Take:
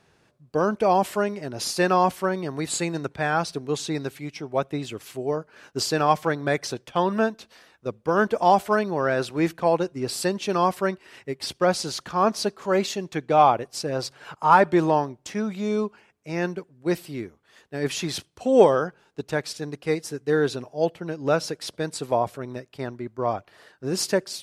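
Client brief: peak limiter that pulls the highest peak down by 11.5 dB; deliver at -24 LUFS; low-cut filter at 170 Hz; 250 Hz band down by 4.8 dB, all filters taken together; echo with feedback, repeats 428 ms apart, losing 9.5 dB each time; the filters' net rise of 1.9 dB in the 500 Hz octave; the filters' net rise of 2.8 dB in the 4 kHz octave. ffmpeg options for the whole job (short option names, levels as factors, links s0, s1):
-af "highpass=170,equalizer=f=250:t=o:g=-8.5,equalizer=f=500:t=o:g=4.5,equalizer=f=4000:t=o:g=3.5,alimiter=limit=0.211:level=0:latency=1,aecho=1:1:428|856|1284|1712:0.335|0.111|0.0365|0.012,volume=1.33"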